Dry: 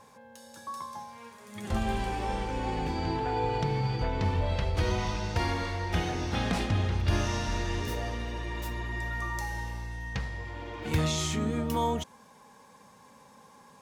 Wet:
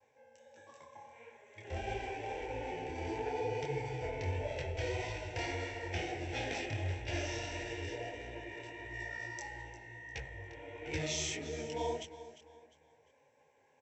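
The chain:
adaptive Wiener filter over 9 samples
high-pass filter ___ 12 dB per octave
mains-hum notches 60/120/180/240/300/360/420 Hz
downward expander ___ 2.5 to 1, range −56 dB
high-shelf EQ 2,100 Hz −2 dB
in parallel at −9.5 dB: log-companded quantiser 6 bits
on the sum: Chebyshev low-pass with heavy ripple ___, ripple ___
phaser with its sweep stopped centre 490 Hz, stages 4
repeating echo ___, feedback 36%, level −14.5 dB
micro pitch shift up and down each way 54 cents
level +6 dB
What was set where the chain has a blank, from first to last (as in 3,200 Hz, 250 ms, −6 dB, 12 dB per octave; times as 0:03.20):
93 Hz, −50 dBFS, 7,800 Hz, 9 dB, 351 ms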